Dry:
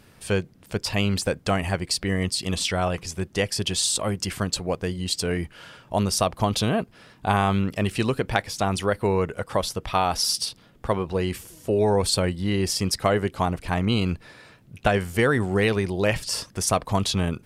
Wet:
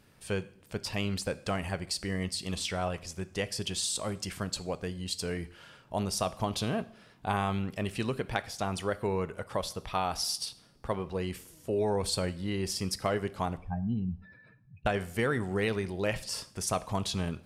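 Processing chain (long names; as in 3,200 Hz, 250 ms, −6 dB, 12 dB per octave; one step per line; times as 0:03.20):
0:13.57–0:14.86: expanding power law on the bin magnitudes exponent 2.7
coupled-rooms reverb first 0.61 s, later 2.4 s, from −27 dB, DRR 14 dB
level −8.5 dB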